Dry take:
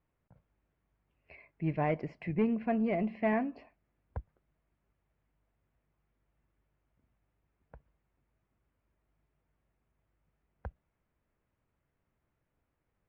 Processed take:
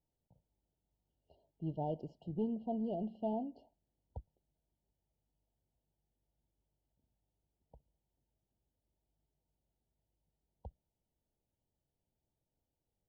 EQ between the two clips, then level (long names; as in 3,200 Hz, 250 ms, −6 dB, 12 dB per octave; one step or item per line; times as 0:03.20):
linear-phase brick-wall band-stop 960–2,800 Hz
−7.0 dB